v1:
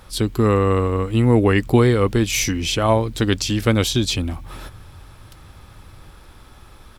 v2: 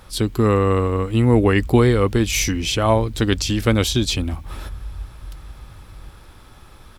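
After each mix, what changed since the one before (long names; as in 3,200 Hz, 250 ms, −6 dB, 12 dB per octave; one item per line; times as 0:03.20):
background: remove high-pass filter 92 Hz 24 dB per octave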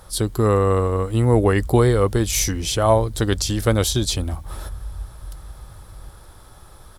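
master: add graphic EQ with 15 bands 250 Hz −6 dB, 630 Hz +3 dB, 2,500 Hz −9 dB, 10,000 Hz +7 dB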